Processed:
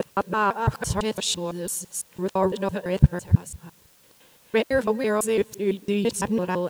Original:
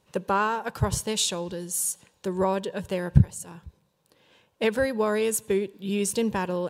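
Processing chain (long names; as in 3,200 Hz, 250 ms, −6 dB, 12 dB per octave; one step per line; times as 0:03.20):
reversed piece by piece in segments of 168 ms
high-shelf EQ 5,400 Hz −6 dB
bit-depth reduction 10 bits, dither triangular
level +2.5 dB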